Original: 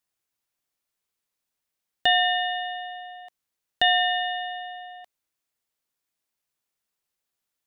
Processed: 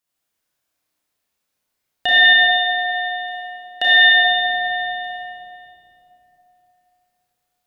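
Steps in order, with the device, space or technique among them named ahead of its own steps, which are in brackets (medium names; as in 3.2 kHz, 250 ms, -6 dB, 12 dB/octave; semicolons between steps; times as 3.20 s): tunnel (flutter echo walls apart 5.6 m, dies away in 0.39 s; reverberation RT60 3.4 s, pre-delay 37 ms, DRR -6.5 dB); 2.57–4.25 s: high-pass 270 Hz 12 dB/octave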